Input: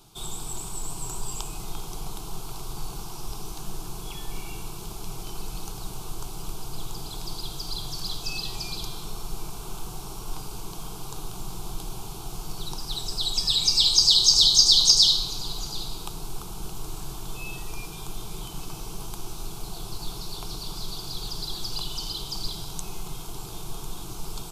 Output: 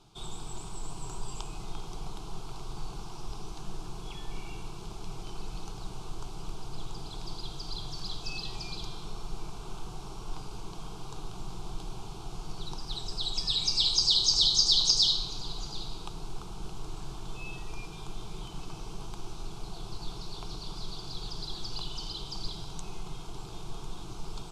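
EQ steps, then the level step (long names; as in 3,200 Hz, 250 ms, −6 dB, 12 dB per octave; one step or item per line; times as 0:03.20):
high-frequency loss of the air 81 metres
−3.5 dB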